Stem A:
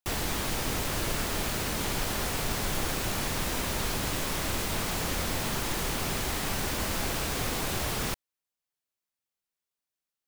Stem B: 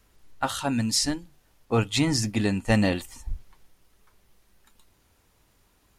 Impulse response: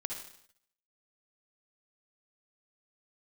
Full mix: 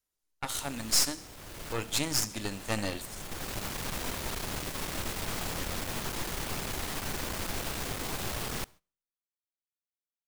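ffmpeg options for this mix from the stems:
-filter_complex "[0:a]asoftclip=type=tanh:threshold=-25.5dB,adelay=500,volume=-4dB,asplit=2[link_01][link_02];[link_02]volume=-21dB[link_03];[1:a]bass=frequency=250:gain=-7,treble=frequency=4000:gain=11,volume=-12dB,asplit=3[link_04][link_05][link_06];[link_05]volume=-10.5dB[link_07];[link_06]apad=whole_len=475117[link_08];[link_01][link_08]sidechaincompress=threshold=-46dB:ratio=8:attack=8:release=569[link_09];[2:a]atrim=start_sample=2205[link_10];[link_03][link_07]amix=inputs=2:normalize=0[link_11];[link_11][link_10]afir=irnorm=-1:irlink=0[link_12];[link_09][link_04][link_12]amix=inputs=3:normalize=0,agate=range=-17dB:threshold=-53dB:ratio=16:detection=peak,aeval=exprs='0.237*(cos(1*acos(clip(val(0)/0.237,-1,1)))-cos(1*PI/2))+0.0376*(cos(8*acos(clip(val(0)/0.237,-1,1)))-cos(8*PI/2))':channel_layout=same"

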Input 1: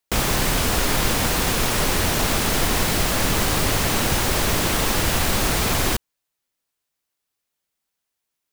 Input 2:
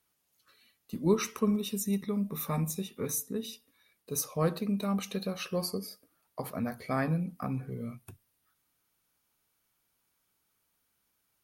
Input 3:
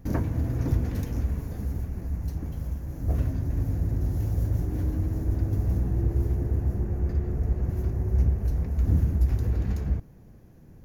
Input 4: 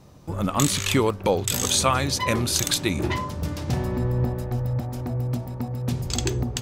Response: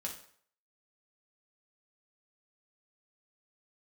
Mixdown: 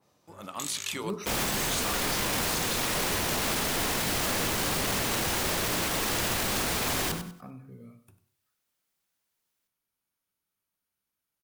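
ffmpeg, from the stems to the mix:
-filter_complex "[0:a]lowshelf=frequency=83:gain=-11.5,adelay=1150,volume=-1.5dB,asplit=2[link_01][link_02];[link_02]volume=-14.5dB[link_03];[1:a]volume=-11.5dB,asplit=3[link_04][link_05][link_06];[link_05]volume=-8dB[link_07];[link_06]volume=-13dB[link_08];[3:a]highpass=frequency=610:poles=1,adynamicequalizer=threshold=0.0112:dfrequency=2800:dqfactor=0.7:tfrequency=2800:tqfactor=0.7:attack=5:release=100:ratio=0.375:range=2:mode=boostabove:tftype=highshelf,volume=-10dB[link_09];[4:a]atrim=start_sample=2205[link_10];[link_07][link_10]afir=irnorm=-1:irlink=0[link_11];[link_03][link_08]amix=inputs=2:normalize=0,aecho=0:1:97|194|291|388:1|0.27|0.0729|0.0197[link_12];[link_01][link_04][link_09][link_11][link_12]amix=inputs=5:normalize=0,bandreject=frequency=45.02:width_type=h:width=4,bandreject=frequency=90.04:width_type=h:width=4,bandreject=frequency=135.06:width_type=h:width=4,bandreject=frequency=180.08:width_type=h:width=4,bandreject=frequency=225.1:width_type=h:width=4,bandreject=frequency=270.12:width_type=h:width=4,bandreject=frequency=315.14:width_type=h:width=4,bandreject=frequency=360.16:width_type=h:width=4,bandreject=frequency=405.18:width_type=h:width=4,bandreject=frequency=450.2:width_type=h:width=4,bandreject=frequency=495.22:width_type=h:width=4,bandreject=frequency=540.24:width_type=h:width=4,bandreject=frequency=585.26:width_type=h:width=4,bandreject=frequency=630.28:width_type=h:width=4,bandreject=frequency=675.3:width_type=h:width=4,bandreject=frequency=720.32:width_type=h:width=4,bandreject=frequency=765.34:width_type=h:width=4,bandreject=frequency=810.36:width_type=h:width=4,bandreject=frequency=855.38:width_type=h:width=4,bandreject=frequency=900.4:width_type=h:width=4,bandreject=frequency=945.42:width_type=h:width=4,bandreject=frequency=990.44:width_type=h:width=4,bandreject=frequency=1035.46:width_type=h:width=4,bandreject=frequency=1080.48:width_type=h:width=4,bandreject=frequency=1125.5:width_type=h:width=4,bandreject=frequency=1170.52:width_type=h:width=4,bandreject=frequency=1215.54:width_type=h:width=4,bandreject=frequency=1260.56:width_type=h:width=4,bandreject=frequency=1305.58:width_type=h:width=4,bandreject=frequency=1350.6:width_type=h:width=4,bandreject=frequency=1395.62:width_type=h:width=4,bandreject=frequency=1440.64:width_type=h:width=4,bandreject=frequency=1485.66:width_type=h:width=4,bandreject=frequency=1530.68:width_type=h:width=4,alimiter=limit=-19.5dB:level=0:latency=1:release=14"

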